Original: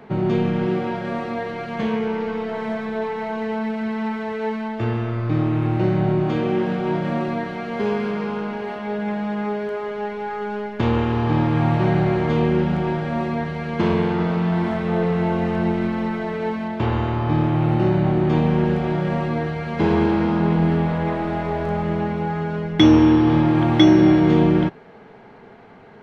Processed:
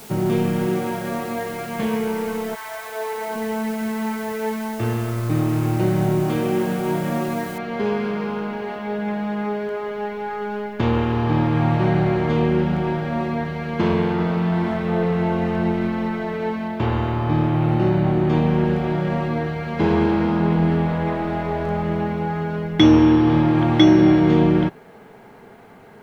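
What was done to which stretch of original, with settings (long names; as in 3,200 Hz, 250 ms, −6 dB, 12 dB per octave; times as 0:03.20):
0:02.54–0:03.34: high-pass filter 1,000 Hz → 250 Hz 24 dB per octave
0:07.58: noise floor change −43 dB −68 dB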